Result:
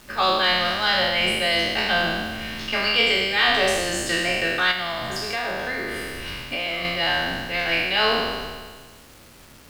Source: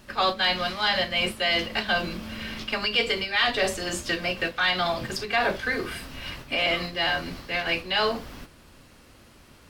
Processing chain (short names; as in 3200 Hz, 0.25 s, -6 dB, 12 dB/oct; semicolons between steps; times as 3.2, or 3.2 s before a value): spectral trails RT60 1.60 s; 4.71–6.85 compressor 4:1, threshold -25 dBFS, peak gain reduction 8 dB; bit-crush 8-bit